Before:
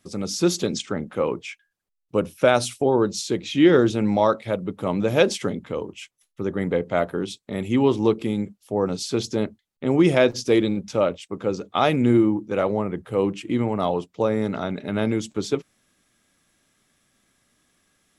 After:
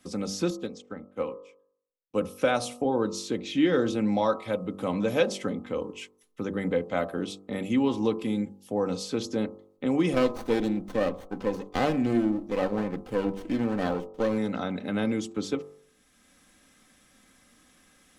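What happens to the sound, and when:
0.5–2.21 upward expander 2.5:1, over -38 dBFS
10.13–14.38 running maximum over 17 samples
whole clip: comb 3.9 ms, depth 47%; de-hum 48.52 Hz, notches 27; three-band squash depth 40%; gain -5.5 dB

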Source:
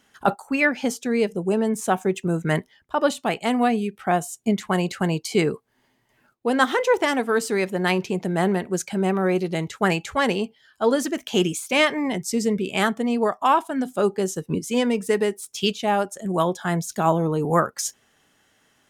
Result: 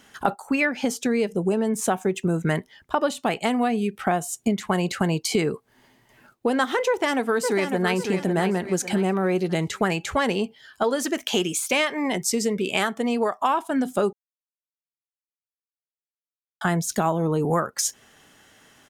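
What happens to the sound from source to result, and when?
6.88–7.95 echo throw 0.55 s, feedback 30%, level -8 dB
10.83–13.45 low shelf 230 Hz -10 dB
14.13–16.61 mute
whole clip: compressor 4:1, threshold -29 dBFS; gain +8 dB

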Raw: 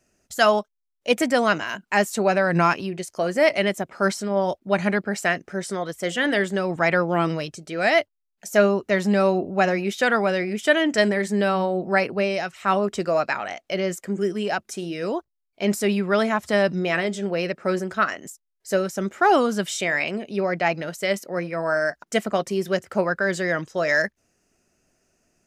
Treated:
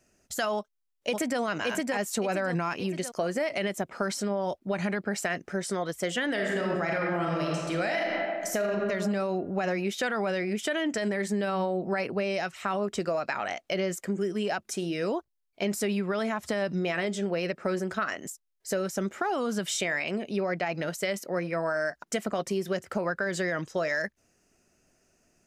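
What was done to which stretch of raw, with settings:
0.56–1.4 echo throw 0.57 s, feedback 35%, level -3.5 dB
6.3–8.68 reverb throw, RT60 1.3 s, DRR -1 dB
whole clip: limiter -15 dBFS; compressor 4:1, threshold -26 dBFS

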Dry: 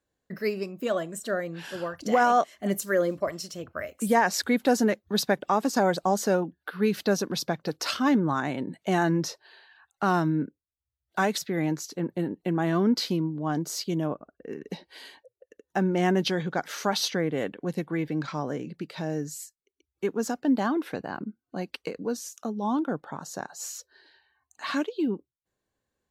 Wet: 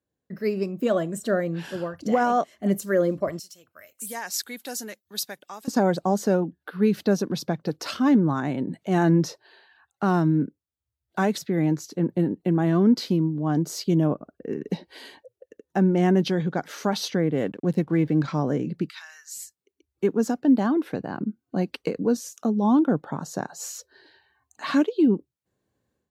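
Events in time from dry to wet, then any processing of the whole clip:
3.39–5.68 pre-emphasis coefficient 0.97
8.67–9.14 transient shaper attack -6 dB, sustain +3 dB
17.34–18.19 backlash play -52.5 dBFS
18.89–19.37 steep high-pass 1200 Hz
whole clip: HPF 84 Hz; low shelf 490 Hz +10.5 dB; AGC; gain -9 dB

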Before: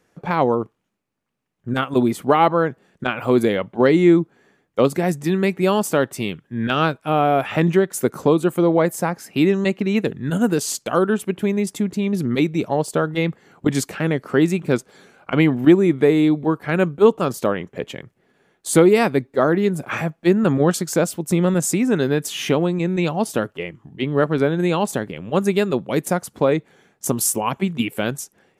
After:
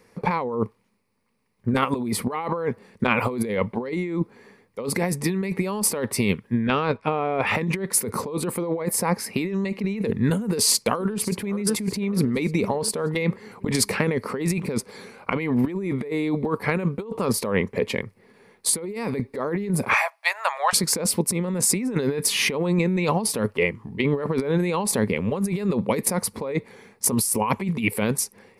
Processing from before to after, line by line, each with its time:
6.61–7.47 air absorption 120 m
10.42–11.58 echo throw 0.58 s, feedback 45%, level -16 dB
19.93–20.73 Chebyshev high-pass 630 Hz, order 6
whole clip: ripple EQ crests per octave 0.9, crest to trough 9 dB; negative-ratio compressor -24 dBFS, ratio -1

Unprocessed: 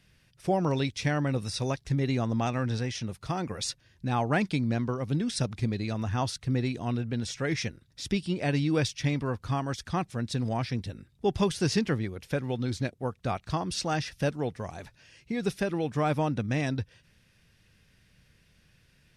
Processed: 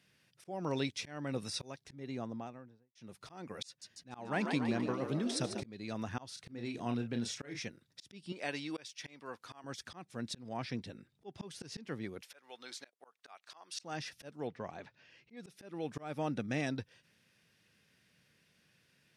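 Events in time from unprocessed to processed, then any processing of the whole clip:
1.67–2.95 studio fade out
3.67–5.64 frequency-shifting echo 0.145 s, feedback 56%, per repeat +78 Hz, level -9 dB
6.28–7.62 doubler 34 ms -7 dB
8.32–9.64 HPF 740 Hz 6 dB/oct
10.42–11.49 high shelf 8900 Hz -9 dB
12.21–13.83 HPF 860 Hz
14.47–15.37 LPF 3700 Hz
15.98–16.72 Butterworth band-stop 1000 Hz, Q 7.2
whole clip: HPF 180 Hz 12 dB/oct; auto swell 0.333 s; gain -4.5 dB

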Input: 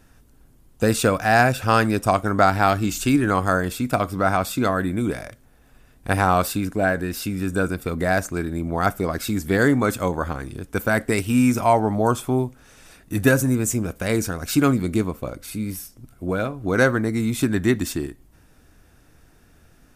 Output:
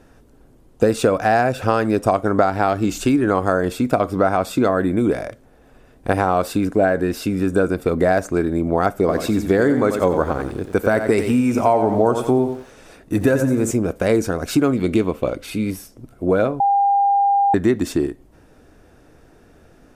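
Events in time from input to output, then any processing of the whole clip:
8.98–13.71 lo-fi delay 90 ms, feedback 35%, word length 7-bit, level -9 dB
14.73–15.71 bell 2900 Hz +9.5 dB 0.99 oct
16.6–17.54 bleep 801 Hz -19 dBFS
whole clip: high shelf 11000 Hz -10.5 dB; compressor, threshold -20 dBFS; bell 470 Hz +10 dB 2 oct; gain +1 dB

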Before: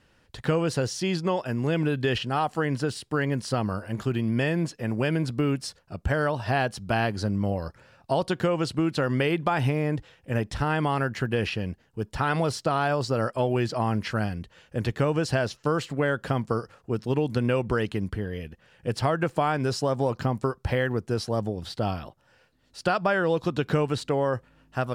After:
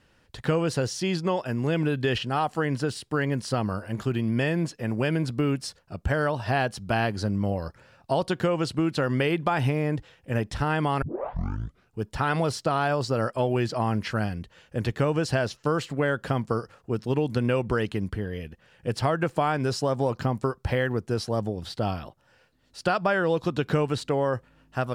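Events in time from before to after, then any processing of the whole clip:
11.02 tape start 0.97 s

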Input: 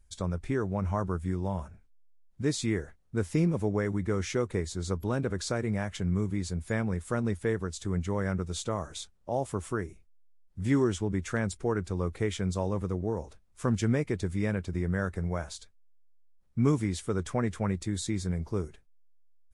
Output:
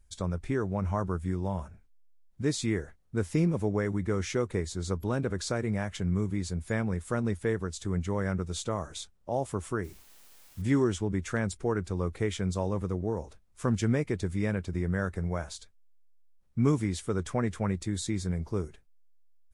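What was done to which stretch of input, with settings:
9.83–10.61 added noise white -58 dBFS

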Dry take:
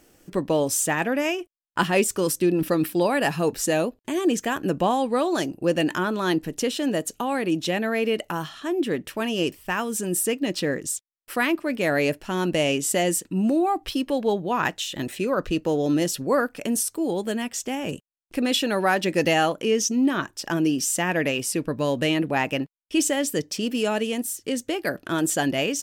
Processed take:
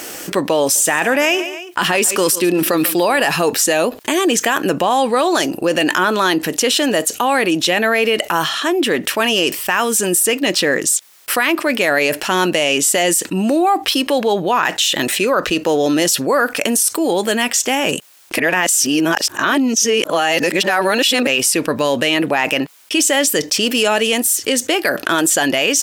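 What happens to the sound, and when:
0.61–3.27 feedback echo 0.142 s, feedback 29%, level -20 dB
18.38–21.27 reverse
whole clip: HPF 810 Hz 6 dB/oct; maximiser +19 dB; fast leveller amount 50%; gain -6.5 dB

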